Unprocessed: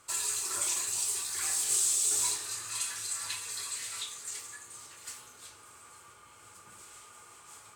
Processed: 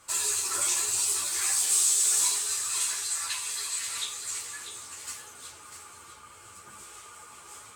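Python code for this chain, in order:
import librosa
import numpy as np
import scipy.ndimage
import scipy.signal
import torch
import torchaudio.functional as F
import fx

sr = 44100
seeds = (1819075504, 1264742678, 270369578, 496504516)

y = fx.low_shelf(x, sr, hz=380.0, db=-8.0, at=(1.26, 3.87))
y = y + 10.0 ** (-9.0 / 20.0) * np.pad(y, (int(647 * sr / 1000.0), 0))[:len(y)]
y = fx.ensemble(y, sr)
y = y * 10.0 ** (7.5 / 20.0)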